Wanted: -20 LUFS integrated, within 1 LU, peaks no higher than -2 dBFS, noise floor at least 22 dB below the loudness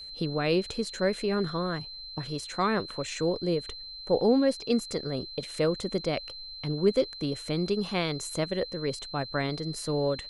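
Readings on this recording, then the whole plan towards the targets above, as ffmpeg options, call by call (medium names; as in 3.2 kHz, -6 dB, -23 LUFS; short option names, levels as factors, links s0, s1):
steady tone 4.1 kHz; tone level -40 dBFS; loudness -29.5 LUFS; peak level -12.5 dBFS; loudness target -20.0 LUFS
-> -af "bandreject=f=4100:w=30"
-af "volume=2.99"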